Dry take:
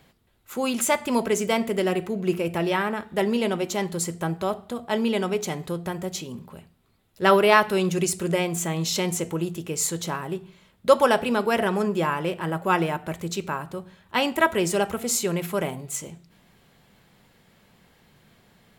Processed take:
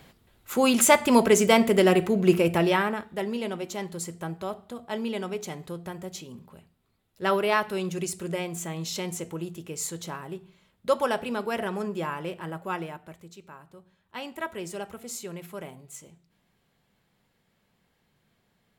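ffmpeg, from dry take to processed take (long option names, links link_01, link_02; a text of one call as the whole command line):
ffmpeg -i in.wav -af "volume=11dB,afade=type=out:start_time=2.39:duration=0.79:silence=0.266073,afade=type=out:start_time=12.34:duration=1:silence=0.251189,afade=type=in:start_time=13.34:duration=1.27:silence=0.473151" out.wav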